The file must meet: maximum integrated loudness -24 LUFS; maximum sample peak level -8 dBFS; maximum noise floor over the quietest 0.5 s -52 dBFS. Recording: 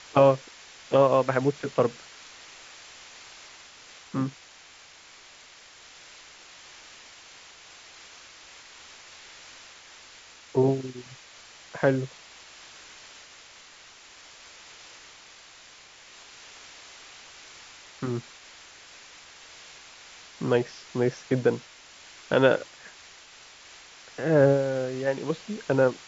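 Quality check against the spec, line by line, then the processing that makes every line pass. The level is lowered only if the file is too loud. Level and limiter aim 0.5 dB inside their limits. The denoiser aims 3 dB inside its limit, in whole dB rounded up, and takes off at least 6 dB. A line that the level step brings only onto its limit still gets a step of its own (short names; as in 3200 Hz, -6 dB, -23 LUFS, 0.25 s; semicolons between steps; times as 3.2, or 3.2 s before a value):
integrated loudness -25.5 LUFS: OK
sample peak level -6.5 dBFS: fail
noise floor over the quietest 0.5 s -51 dBFS: fail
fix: denoiser 6 dB, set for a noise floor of -51 dBFS; limiter -8.5 dBFS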